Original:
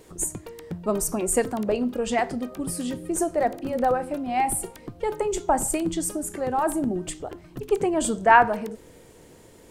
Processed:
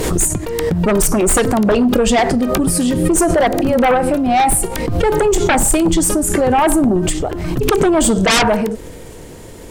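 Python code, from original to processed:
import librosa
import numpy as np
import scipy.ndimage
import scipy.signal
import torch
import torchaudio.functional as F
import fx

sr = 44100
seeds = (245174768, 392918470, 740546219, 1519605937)

y = fx.low_shelf(x, sr, hz=77.0, db=9.5)
y = fx.fold_sine(y, sr, drive_db=16, ceiling_db=-2.5)
y = fx.pre_swell(y, sr, db_per_s=32.0)
y = y * 10.0 ** (-6.5 / 20.0)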